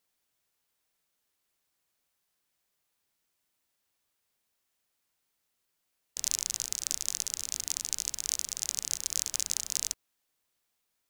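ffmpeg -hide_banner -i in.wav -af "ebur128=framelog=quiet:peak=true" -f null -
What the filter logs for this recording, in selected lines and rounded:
Integrated loudness:
  I:         -31.2 LUFS
  Threshold: -41.3 LUFS
Loudness range:
  LRA:         7.2 LU
  Threshold: -52.8 LUFS
  LRA low:   -38.2 LUFS
  LRA high:  -31.0 LUFS
True peak:
  Peak:       -5.8 dBFS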